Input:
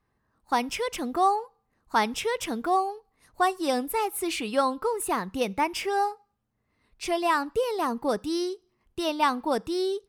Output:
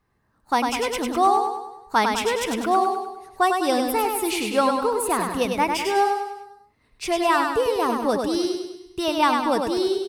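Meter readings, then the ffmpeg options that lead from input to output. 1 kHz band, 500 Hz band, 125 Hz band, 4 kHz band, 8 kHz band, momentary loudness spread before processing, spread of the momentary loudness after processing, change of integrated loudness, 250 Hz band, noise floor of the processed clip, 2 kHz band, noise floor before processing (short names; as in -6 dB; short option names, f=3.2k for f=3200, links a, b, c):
+5.0 dB, +5.0 dB, +5.0 dB, +5.0 dB, +5.0 dB, 6 LU, 8 LU, +5.0 dB, +5.5 dB, -65 dBFS, +5.0 dB, -75 dBFS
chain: -af "aecho=1:1:100|200|300|400|500|600:0.596|0.298|0.149|0.0745|0.0372|0.0186,volume=3.5dB"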